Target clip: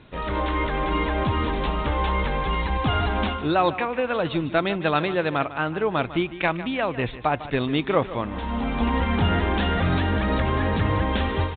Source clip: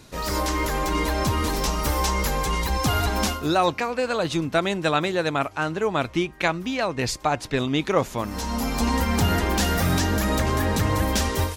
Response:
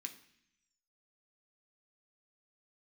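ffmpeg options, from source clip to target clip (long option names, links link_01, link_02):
-af "aecho=1:1:151|302:0.188|0.0414" -ar 8000 -c:a adpcm_g726 -b:a 40k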